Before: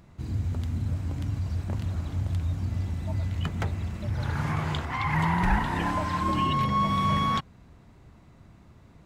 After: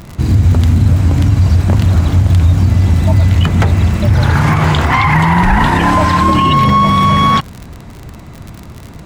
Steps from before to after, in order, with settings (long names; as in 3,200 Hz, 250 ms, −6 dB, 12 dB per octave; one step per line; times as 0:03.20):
surface crackle 48 per second −40 dBFS
boost into a limiter +22 dB
level −1 dB